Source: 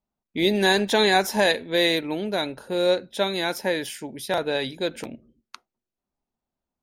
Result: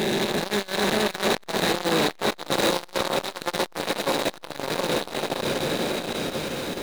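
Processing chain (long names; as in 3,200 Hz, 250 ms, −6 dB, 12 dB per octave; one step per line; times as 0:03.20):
spectrum smeared in time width 1,140 ms
power curve on the samples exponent 0.35
0:02.50–0:02.98: high-shelf EQ 3,400 Hz +6 dB
on a send: feedback echo with a long and a short gap by turns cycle 958 ms, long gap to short 3 to 1, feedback 48%, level −6 dB
on the sum: saturating transformer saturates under 900 Hz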